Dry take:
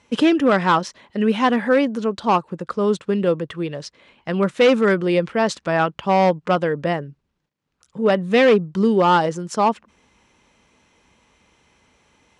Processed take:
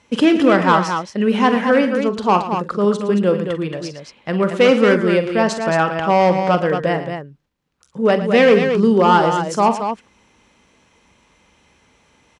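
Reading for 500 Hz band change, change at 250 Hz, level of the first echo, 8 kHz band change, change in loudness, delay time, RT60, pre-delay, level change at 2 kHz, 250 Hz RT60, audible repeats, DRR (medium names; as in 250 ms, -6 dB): +3.0 dB, +3.0 dB, -12.0 dB, +3.0 dB, +3.0 dB, 44 ms, no reverb, no reverb, +3.0 dB, no reverb, 3, no reverb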